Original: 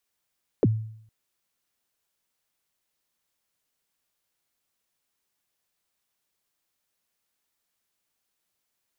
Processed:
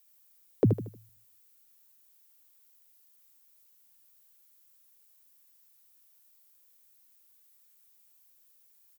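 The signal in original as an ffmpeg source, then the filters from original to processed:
-f lavfi -i "aevalsrc='0.2*pow(10,-3*t/0.66)*sin(2*PI*(540*0.034/log(110/540)*(exp(log(110/540)*min(t,0.034)/0.034)-1)+110*max(t-0.034,0)))':duration=0.46:sample_rate=44100"
-filter_complex "[0:a]highpass=61,aemphasis=mode=production:type=50fm,asplit=2[link_01][link_02];[link_02]aecho=0:1:77|154|231|308:0.447|0.161|0.0579|0.0208[link_03];[link_01][link_03]amix=inputs=2:normalize=0"

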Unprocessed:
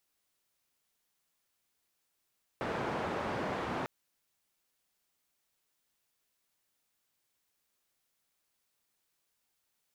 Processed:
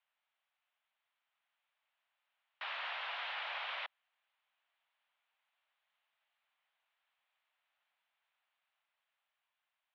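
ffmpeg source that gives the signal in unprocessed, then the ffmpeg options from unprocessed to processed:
-f lavfi -i "anoisesrc=color=white:duration=1.25:sample_rate=44100:seed=1,highpass=frequency=92,lowpass=frequency=1000,volume=-17.3dB"
-af "dynaudnorm=framelen=430:gausssize=9:maxgain=3.5dB,aeval=exprs='(mod(44.7*val(0)+1,2)-1)/44.7':channel_layout=same,highpass=frequency=460:width_type=q:width=0.5412,highpass=frequency=460:width_type=q:width=1.307,lowpass=frequency=3200:width_type=q:width=0.5176,lowpass=frequency=3200:width_type=q:width=0.7071,lowpass=frequency=3200:width_type=q:width=1.932,afreqshift=190"

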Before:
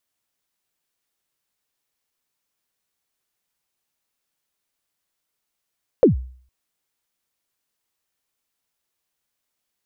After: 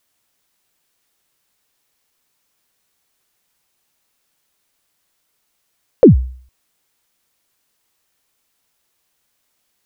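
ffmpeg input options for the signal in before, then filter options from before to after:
-f lavfi -i "aevalsrc='0.501*pow(10,-3*t/0.5)*sin(2*PI*(570*0.126/log(63/570)*(exp(log(63/570)*min(t,0.126)/0.126)-1)+63*max(t-0.126,0)))':duration=0.46:sample_rate=44100"
-af "alimiter=level_in=11dB:limit=-1dB:release=50:level=0:latency=1"

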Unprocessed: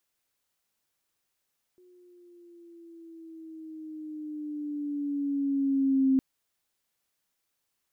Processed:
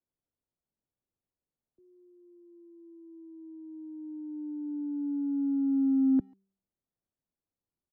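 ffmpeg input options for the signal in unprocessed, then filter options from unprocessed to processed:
-f lavfi -i "aevalsrc='pow(10,(-19+36*(t/4.41-1))/20)*sin(2*PI*363*4.41/(-5.5*log(2)/12)*(exp(-5.5*log(2)/12*t/4.41)-1))':duration=4.41:sample_rate=44100"
-filter_complex "[0:a]bandreject=frequency=194:width_type=h:width=4,bandreject=frequency=388:width_type=h:width=4,acrossover=split=110|190|250[link_01][link_02][link_03][link_04];[link_04]adynamicsmooth=sensitivity=1.5:basefreq=540[link_05];[link_01][link_02][link_03][link_05]amix=inputs=4:normalize=0,asplit=2[link_06][link_07];[link_07]adelay=140,highpass=300,lowpass=3400,asoftclip=type=hard:threshold=-27.5dB,volume=-27dB[link_08];[link_06][link_08]amix=inputs=2:normalize=0"

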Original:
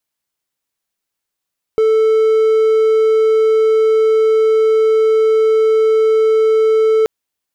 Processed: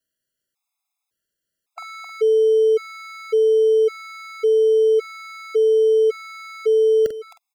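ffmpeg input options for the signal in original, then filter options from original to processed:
-f lavfi -i "aevalsrc='0.447*(1-4*abs(mod(440*t+0.25,1)-0.5))':duration=5.28:sample_rate=44100"
-filter_complex "[0:a]acrossover=split=180|3000[link_01][link_02][link_03];[link_02]acompressor=threshold=-17dB:ratio=6[link_04];[link_01][link_04][link_03]amix=inputs=3:normalize=0,asplit=2[link_05][link_06];[link_06]aecho=0:1:45|264|313:0.355|0.335|0.126[link_07];[link_05][link_07]amix=inputs=2:normalize=0,afftfilt=real='re*gt(sin(2*PI*0.9*pts/sr)*(1-2*mod(floor(b*sr/1024/680),2)),0)':imag='im*gt(sin(2*PI*0.9*pts/sr)*(1-2*mod(floor(b*sr/1024/680),2)),0)':win_size=1024:overlap=0.75"

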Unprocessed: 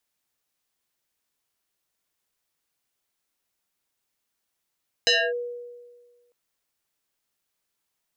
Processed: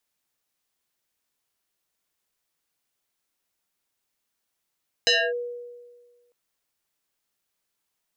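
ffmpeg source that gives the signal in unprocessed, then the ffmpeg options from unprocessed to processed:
-f lavfi -i "aevalsrc='0.178*pow(10,-3*t/1.54)*sin(2*PI*483*t+4.6*clip(1-t/0.26,0,1)*sin(2*PI*2.38*483*t))':duration=1.25:sample_rate=44100"
-af "bandreject=frequency=60:width_type=h:width=6,bandreject=frequency=120:width_type=h:width=6"

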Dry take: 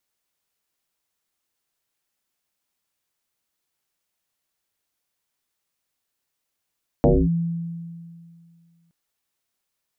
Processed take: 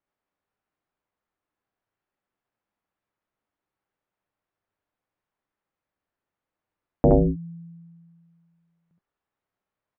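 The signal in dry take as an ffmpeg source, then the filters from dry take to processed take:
-f lavfi -i "aevalsrc='0.282*pow(10,-3*t/2.25)*sin(2*PI*168*t+5.2*clip(1-t/0.25,0,1)*sin(2*PI*0.61*168*t))':duration=1.87:sample_rate=44100"
-filter_complex "[0:a]lowpass=1500,asplit=2[link_01][link_02];[link_02]aecho=0:1:69|79:0.668|0.422[link_03];[link_01][link_03]amix=inputs=2:normalize=0"

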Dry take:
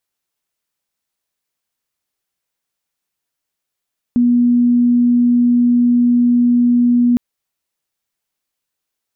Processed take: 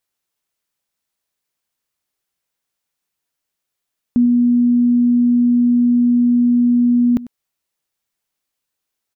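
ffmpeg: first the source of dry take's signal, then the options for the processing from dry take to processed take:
-f lavfi -i "sine=frequency=242:duration=3.01:sample_rate=44100,volume=9.06dB"
-af "aecho=1:1:97:0.119"

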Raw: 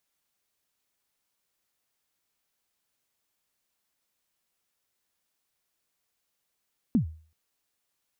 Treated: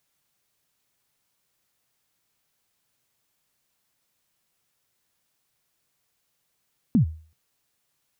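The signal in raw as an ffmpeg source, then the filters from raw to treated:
-f lavfi -i "aevalsrc='0.158*pow(10,-3*t/0.42)*sin(2*PI*(270*0.107/log(79/270)*(exp(log(79/270)*min(t,0.107)/0.107)-1)+79*max(t-0.107,0)))':duration=0.38:sample_rate=44100"
-filter_complex "[0:a]equalizer=frequency=130:width_type=o:width=0.76:gain=8,asplit=2[link_01][link_02];[link_02]alimiter=level_in=1.5dB:limit=-24dB:level=0:latency=1,volume=-1.5dB,volume=-2dB[link_03];[link_01][link_03]amix=inputs=2:normalize=0"

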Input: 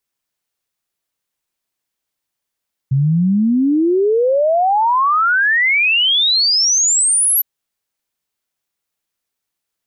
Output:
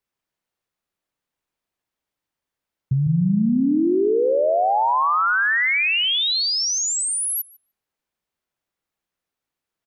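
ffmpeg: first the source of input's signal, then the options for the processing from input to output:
-f lavfi -i "aevalsrc='0.282*clip(min(t,4.51-t)/0.01,0,1)*sin(2*PI*130*4.51/log(12000/130)*(exp(log(12000/130)*t/4.51)-1))':duration=4.51:sample_rate=44100"
-filter_complex "[0:a]highshelf=frequency=3400:gain=-10.5,acompressor=threshold=-18dB:ratio=6,asplit=2[link_01][link_02];[link_02]adelay=150,lowpass=frequency=1300:poles=1,volume=-6.5dB,asplit=2[link_03][link_04];[link_04]adelay=150,lowpass=frequency=1300:poles=1,volume=0.46,asplit=2[link_05][link_06];[link_06]adelay=150,lowpass=frequency=1300:poles=1,volume=0.46,asplit=2[link_07][link_08];[link_08]adelay=150,lowpass=frequency=1300:poles=1,volume=0.46,asplit=2[link_09][link_10];[link_10]adelay=150,lowpass=frequency=1300:poles=1,volume=0.46[link_11];[link_03][link_05][link_07][link_09][link_11]amix=inputs=5:normalize=0[link_12];[link_01][link_12]amix=inputs=2:normalize=0"

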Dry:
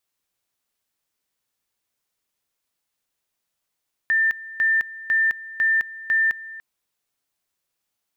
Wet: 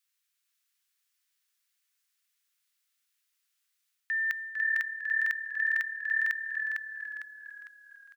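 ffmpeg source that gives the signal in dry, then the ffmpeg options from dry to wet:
-f lavfi -i "aevalsrc='pow(10,(-16-18*gte(mod(t,0.5),0.21))/20)*sin(2*PI*1790*t)':duration=2.5:sample_rate=44100"
-filter_complex "[0:a]highpass=frequency=1400:width=0.5412,highpass=frequency=1400:width=1.3066,areverse,acompressor=threshold=-29dB:ratio=6,areverse,asplit=7[link_01][link_02][link_03][link_04][link_05][link_06][link_07];[link_02]adelay=453,afreqshift=-37,volume=-4dB[link_08];[link_03]adelay=906,afreqshift=-74,volume=-11.1dB[link_09];[link_04]adelay=1359,afreqshift=-111,volume=-18.3dB[link_10];[link_05]adelay=1812,afreqshift=-148,volume=-25.4dB[link_11];[link_06]adelay=2265,afreqshift=-185,volume=-32.5dB[link_12];[link_07]adelay=2718,afreqshift=-222,volume=-39.7dB[link_13];[link_01][link_08][link_09][link_10][link_11][link_12][link_13]amix=inputs=7:normalize=0"

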